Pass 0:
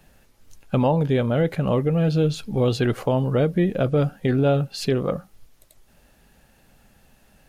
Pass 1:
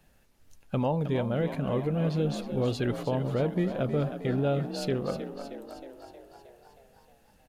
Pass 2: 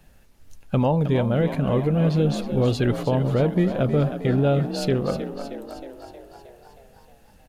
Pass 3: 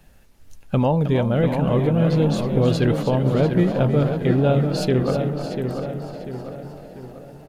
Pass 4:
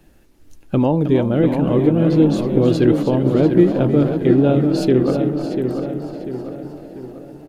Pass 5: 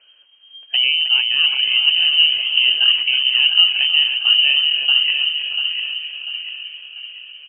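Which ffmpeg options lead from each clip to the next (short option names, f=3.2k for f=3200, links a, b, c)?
-filter_complex "[0:a]asplit=9[a][b][c][d][e][f][g][h][i];[b]adelay=314,afreqshift=46,volume=-10dB[j];[c]adelay=628,afreqshift=92,volume=-14.2dB[k];[d]adelay=942,afreqshift=138,volume=-18.3dB[l];[e]adelay=1256,afreqshift=184,volume=-22.5dB[m];[f]adelay=1570,afreqshift=230,volume=-26.6dB[n];[g]adelay=1884,afreqshift=276,volume=-30.8dB[o];[h]adelay=2198,afreqshift=322,volume=-34.9dB[p];[i]adelay=2512,afreqshift=368,volume=-39.1dB[q];[a][j][k][l][m][n][o][p][q]amix=inputs=9:normalize=0,volume=-8dB"
-af "lowshelf=f=120:g=5.5,volume=6dB"
-filter_complex "[0:a]asplit=2[a][b];[b]adelay=693,lowpass=f=3k:p=1,volume=-6.5dB,asplit=2[c][d];[d]adelay=693,lowpass=f=3k:p=1,volume=0.48,asplit=2[e][f];[f]adelay=693,lowpass=f=3k:p=1,volume=0.48,asplit=2[g][h];[h]adelay=693,lowpass=f=3k:p=1,volume=0.48,asplit=2[i][j];[j]adelay=693,lowpass=f=3k:p=1,volume=0.48,asplit=2[k][l];[l]adelay=693,lowpass=f=3k:p=1,volume=0.48[m];[a][c][e][g][i][k][m]amix=inputs=7:normalize=0,volume=1.5dB"
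-af "equalizer=f=320:w=2.5:g=14,volume=-1dB"
-af "lowpass=f=2.7k:t=q:w=0.5098,lowpass=f=2.7k:t=q:w=0.6013,lowpass=f=2.7k:t=q:w=0.9,lowpass=f=2.7k:t=q:w=2.563,afreqshift=-3200,volume=-1dB"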